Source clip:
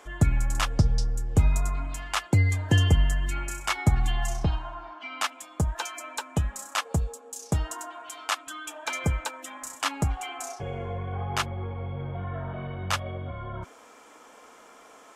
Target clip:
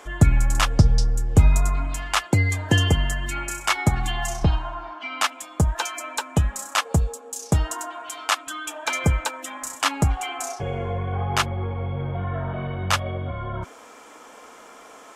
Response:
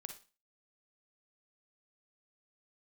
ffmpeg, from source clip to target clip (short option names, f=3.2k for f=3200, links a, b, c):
-filter_complex "[0:a]asettb=1/sr,asplit=3[a][b][c];[a]atrim=end=2.214[d];[b]atrim=start=2.21:end=4.42,asetpts=PTS-STARTPTS,afade=t=in:d=0.004:c=qsin,afade=t=out:st=2.206:d=0.004:c=qsin,lowshelf=f=120:g=-9[e];[c]atrim=start=4.416[f];[d][e]acrossfade=d=0.004:c1=hsin:c2=qsin[g];[g][f]acrossfade=d=0.004:c1=qsin:c2=hsin,volume=6dB"